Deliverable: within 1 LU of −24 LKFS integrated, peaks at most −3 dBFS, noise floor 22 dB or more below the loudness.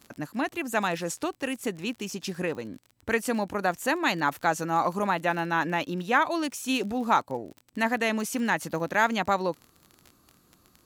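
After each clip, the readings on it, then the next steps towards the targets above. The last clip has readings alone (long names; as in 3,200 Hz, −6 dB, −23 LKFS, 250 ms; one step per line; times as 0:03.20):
crackle rate 35 per second; integrated loudness −28.0 LKFS; sample peak −9.0 dBFS; target loudness −24.0 LKFS
→ click removal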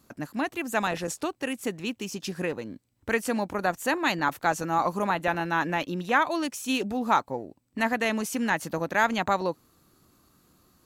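crackle rate 0 per second; integrated loudness −28.0 LKFS; sample peak −9.0 dBFS; target loudness −24.0 LKFS
→ level +4 dB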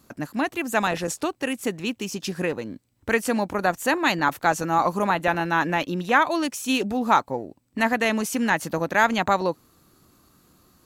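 integrated loudness −24.0 LKFS; sample peak −5.0 dBFS; background noise floor −67 dBFS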